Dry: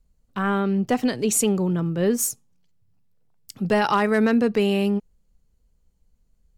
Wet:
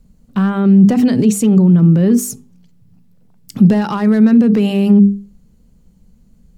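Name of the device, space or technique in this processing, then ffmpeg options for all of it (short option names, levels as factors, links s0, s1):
loud club master: -af "bandreject=f=50:t=h:w=6,bandreject=f=100:t=h:w=6,bandreject=f=150:t=h:w=6,bandreject=f=200:t=h:w=6,bandreject=f=250:t=h:w=6,bandreject=f=300:t=h:w=6,bandreject=f=350:t=h:w=6,bandreject=f=400:t=h:w=6,bandreject=f=450:t=h:w=6,acompressor=threshold=0.0562:ratio=2.5,asoftclip=type=hard:threshold=0.112,alimiter=level_in=22.4:limit=0.891:release=50:level=0:latency=1,equalizer=f=200:w=1:g=15,volume=0.188"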